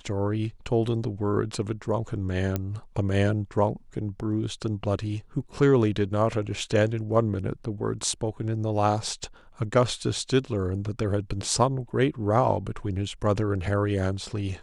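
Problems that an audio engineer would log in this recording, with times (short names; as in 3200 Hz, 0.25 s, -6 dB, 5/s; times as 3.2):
2.56 pop -13 dBFS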